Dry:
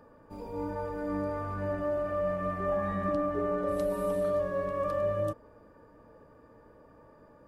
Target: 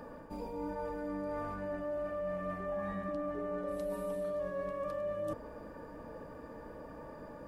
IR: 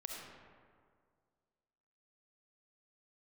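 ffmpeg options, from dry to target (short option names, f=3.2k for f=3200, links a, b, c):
-af "equalizer=f=100:t=o:w=0.33:g=-12,equalizer=f=400:t=o:w=0.33:g=-4,equalizer=f=1.25k:t=o:w=0.33:g=-4,areverse,acompressor=threshold=-48dB:ratio=4,areverse,volume=9.5dB"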